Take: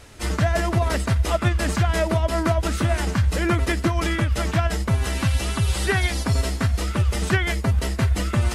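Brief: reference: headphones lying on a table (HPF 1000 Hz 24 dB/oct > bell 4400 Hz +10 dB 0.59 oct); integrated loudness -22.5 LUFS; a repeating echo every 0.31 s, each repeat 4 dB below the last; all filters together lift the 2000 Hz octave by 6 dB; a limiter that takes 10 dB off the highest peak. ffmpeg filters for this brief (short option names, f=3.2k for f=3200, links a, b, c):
-af "equalizer=f=2k:t=o:g=6.5,alimiter=limit=-16dB:level=0:latency=1,highpass=f=1k:w=0.5412,highpass=f=1k:w=1.3066,equalizer=f=4.4k:t=o:w=0.59:g=10,aecho=1:1:310|620|930|1240|1550|1860|2170|2480|2790:0.631|0.398|0.25|0.158|0.0994|0.0626|0.0394|0.0249|0.0157,volume=3dB"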